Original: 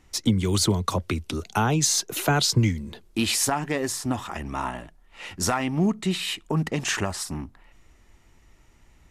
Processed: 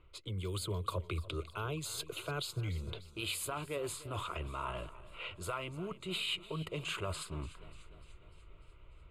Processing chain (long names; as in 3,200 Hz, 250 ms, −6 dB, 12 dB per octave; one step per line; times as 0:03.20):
low-pass that shuts in the quiet parts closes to 2,600 Hz, open at −21 dBFS
reversed playback
downward compressor 5 to 1, threshold −33 dBFS, peak gain reduction 16 dB
reversed playback
phaser with its sweep stopped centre 1,200 Hz, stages 8
feedback echo with a swinging delay time 296 ms, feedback 61%, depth 59 cents, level −17.5 dB
level +1 dB